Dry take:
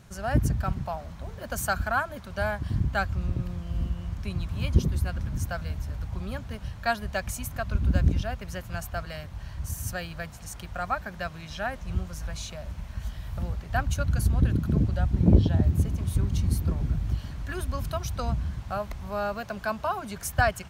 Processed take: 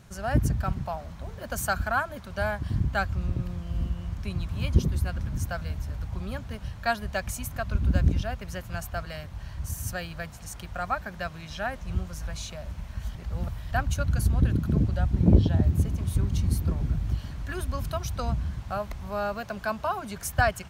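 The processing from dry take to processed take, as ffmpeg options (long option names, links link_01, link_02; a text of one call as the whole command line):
ffmpeg -i in.wav -filter_complex "[0:a]asplit=3[link_01][link_02][link_03];[link_01]atrim=end=13.152[link_04];[link_02]atrim=start=13.148:end=13.712,asetpts=PTS-STARTPTS,areverse[link_05];[link_03]atrim=start=13.708[link_06];[link_04][link_05]acrossfade=duration=0.004:curve1=hsin:curve2=hsin[link_07];[link_07][link_06]acrossfade=duration=0.004:curve1=hsin:curve2=hsin" out.wav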